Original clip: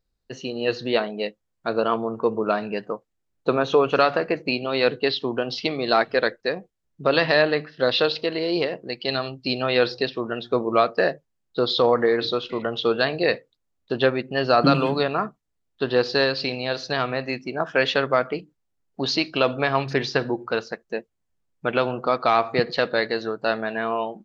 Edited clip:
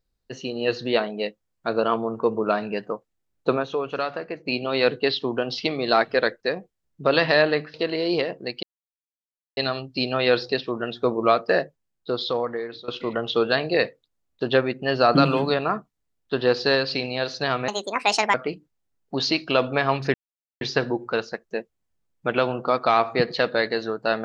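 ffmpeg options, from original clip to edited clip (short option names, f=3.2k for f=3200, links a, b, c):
-filter_complex "[0:a]asplit=9[a][b][c][d][e][f][g][h][i];[a]atrim=end=3.67,asetpts=PTS-STARTPTS,afade=t=out:st=3.52:d=0.15:silence=0.375837[j];[b]atrim=start=3.67:end=4.41,asetpts=PTS-STARTPTS,volume=-8.5dB[k];[c]atrim=start=4.41:end=7.742,asetpts=PTS-STARTPTS,afade=t=in:d=0.15:silence=0.375837[l];[d]atrim=start=8.168:end=9.06,asetpts=PTS-STARTPTS,afade=t=out:st=0.888:d=0.004:c=hsin,apad=pad_dur=0.94[m];[e]atrim=start=9.06:end=12.37,asetpts=PTS-STARTPTS,afade=t=in:d=0.004:c=hsin,afade=t=out:st=2.02:d=1.29:silence=0.112202[n];[f]atrim=start=12.37:end=17.174,asetpts=PTS-STARTPTS,afade=t=in:d=0.004:c=hsin:silence=0.112202[o];[g]atrim=start=17.17:end=18.2,asetpts=PTS-STARTPTS,asetrate=68796,aresample=44100,atrim=end_sample=29117,asetpts=PTS-STARTPTS[p];[h]atrim=start=18.196:end=20,asetpts=PTS-STARTPTS,afade=t=out:st=1.8:d=0.004:c=hsin,apad=pad_dur=0.47[q];[i]atrim=start=20,asetpts=PTS-STARTPTS,afade=t=in:d=0.004:c=hsin[r];[j][k][l]concat=n=3:v=0:a=1[s];[m][n][o]concat=n=3:v=0:a=1[t];[s][t]acrossfade=d=0.004:c1=hsin:c2=hsin[u];[u][p]acrossfade=d=0.004:c1=hsin:c2=hsin[v];[q][r]concat=n=2:v=0:a=1[w];[v][w]acrossfade=d=0.004:c1=hsin:c2=hsin"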